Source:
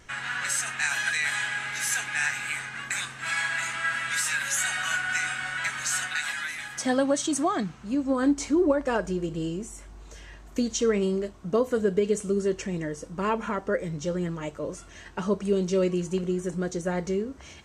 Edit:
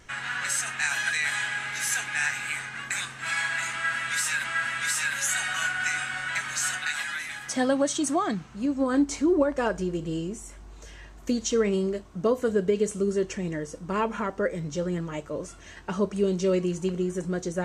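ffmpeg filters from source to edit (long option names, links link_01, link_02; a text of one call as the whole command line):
ffmpeg -i in.wav -filter_complex "[0:a]asplit=2[link_01][link_02];[link_01]atrim=end=4.442[link_03];[link_02]atrim=start=3.728[link_04];[link_03][link_04]acrossfade=duration=0.004:curve1=hsin:curve2=hsin" out.wav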